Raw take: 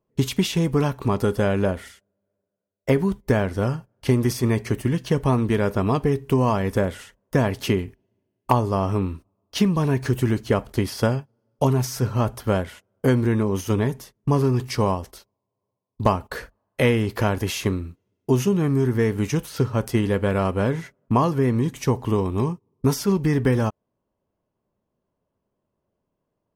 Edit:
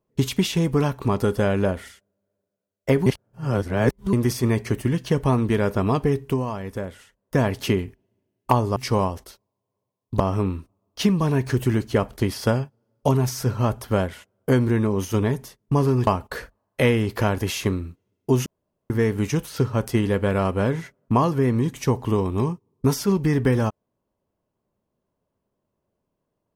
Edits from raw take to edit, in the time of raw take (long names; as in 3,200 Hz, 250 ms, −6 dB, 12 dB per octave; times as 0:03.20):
0:03.06–0:04.13: reverse
0:06.22–0:07.40: duck −8.5 dB, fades 0.24 s
0:14.63–0:16.07: move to 0:08.76
0:18.46–0:18.90: fill with room tone